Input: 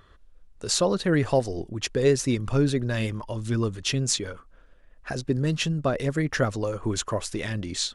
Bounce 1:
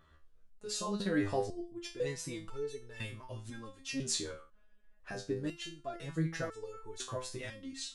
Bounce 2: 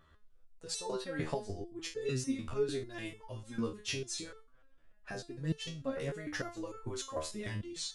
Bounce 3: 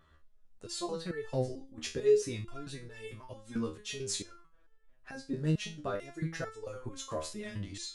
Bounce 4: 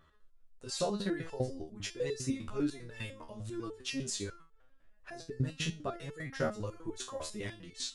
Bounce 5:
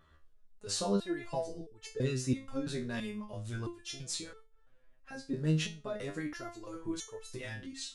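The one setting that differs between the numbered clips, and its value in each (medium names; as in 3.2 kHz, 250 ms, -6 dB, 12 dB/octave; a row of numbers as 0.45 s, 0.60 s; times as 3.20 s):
resonator arpeggio, rate: 2 Hz, 6.7 Hz, 4.5 Hz, 10 Hz, 3 Hz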